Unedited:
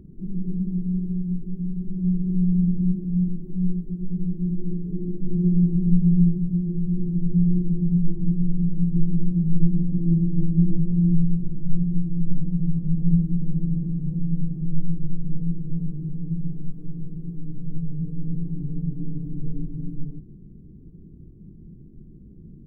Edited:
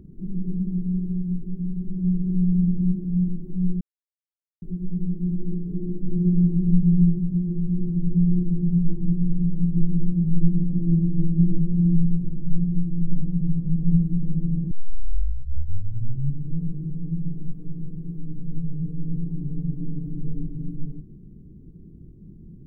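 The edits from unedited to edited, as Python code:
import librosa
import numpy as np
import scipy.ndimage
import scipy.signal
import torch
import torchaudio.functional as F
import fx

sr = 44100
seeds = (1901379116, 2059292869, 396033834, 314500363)

y = fx.edit(x, sr, fx.insert_silence(at_s=3.81, length_s=0.81),
    fx.tape_start(start_s=13.9, length_s=1.89), tone=tone)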